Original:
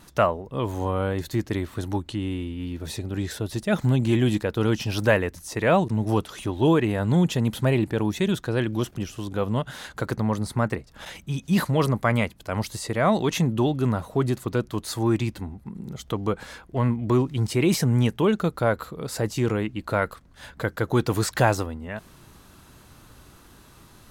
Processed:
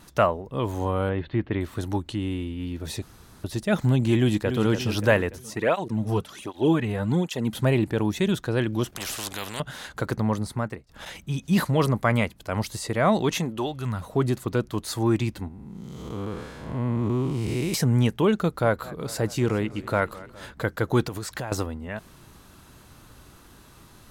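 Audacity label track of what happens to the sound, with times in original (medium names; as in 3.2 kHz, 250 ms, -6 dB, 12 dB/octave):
1.090000	1.610000	steep low-pass 3.3 kHz
3.020000	3.440000	room tone
4.160000	4.630000	echo throw 290 ms, feedback 50%, level -8 dB
5.380000	7.550000	cancelling through-zero flanger nulls at 1.3 Hz, depth 3.8 ms
8.960000	9.600000	spectrum-flattening compressor 4:1
10.330000	10.890000	fade out, to -14.5 dB
13.370000	14.010000	peaking EQ 66 Hz -> 560 Hz -13.5 dB 2 oct
15.480000	17.740000	spectral blur width 274 ms
18.360000	20.530000	modulated delay 209 ms, feedback 66%, depth 162 cents, level -19.5 dB
21.080000	21.520000	compression, threshold -29 dBFS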